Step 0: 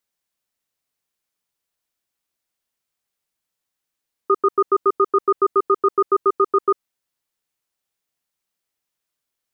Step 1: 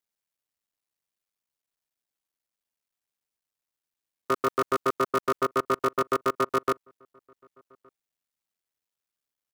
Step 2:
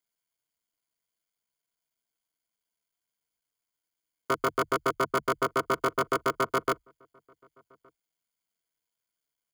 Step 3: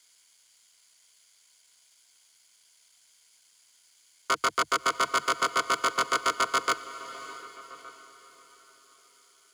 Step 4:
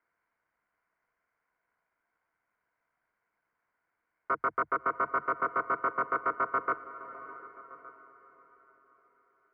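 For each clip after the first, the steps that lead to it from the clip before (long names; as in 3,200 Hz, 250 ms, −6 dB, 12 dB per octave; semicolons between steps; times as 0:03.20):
sub-harmonics by changed cycles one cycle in 3, muted; slap from a distant wall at 200 metres, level −30 dB; level −6 dB
EQ curve with evenly spaced ripples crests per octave 1.8, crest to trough 9 dB
meter weighting curve ITU-R 468; power curve on the samples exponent 0.7; feedback delay with all-pass diffusion 629 ms, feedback 41%, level −15 dB; level −3.5 dB
inverse Chebyshev low-pass filter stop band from 3,300 Hz, stop band 40 dB; level −2.5 dB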